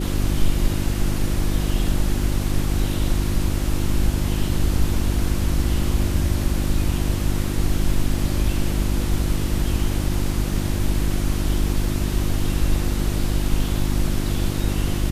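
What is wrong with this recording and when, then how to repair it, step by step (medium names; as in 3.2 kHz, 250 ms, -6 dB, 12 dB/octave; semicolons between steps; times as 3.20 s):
hum 50 Hz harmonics 7 -24 dBFS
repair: de-hum 50 Hz, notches 7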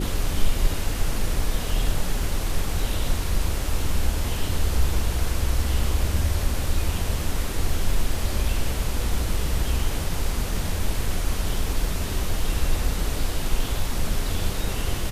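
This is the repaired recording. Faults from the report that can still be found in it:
nothing left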